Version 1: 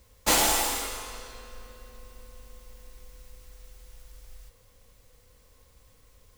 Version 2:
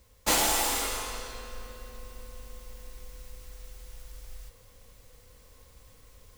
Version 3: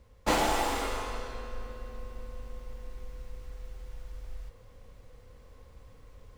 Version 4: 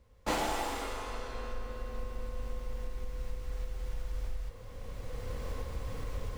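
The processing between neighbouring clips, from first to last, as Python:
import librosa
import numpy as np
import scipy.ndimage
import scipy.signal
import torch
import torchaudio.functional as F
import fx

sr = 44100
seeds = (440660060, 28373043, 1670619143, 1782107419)

y1 = fx.rider(x, sr, range_db=10, speed_s=0.5)
y2 = fx.lowpass(y1, sr, hz=1300.0, slope=6)
y2 = y2 * 10.0 ** (3.5 / 20.0)
y3 = fx.recorder_agc(y2, sr, target_db=-22.0, rise_db_per_s=13.0, max_gain_db=30)
y3 = y3 * 10.0 ** (-5.5 / 20.0)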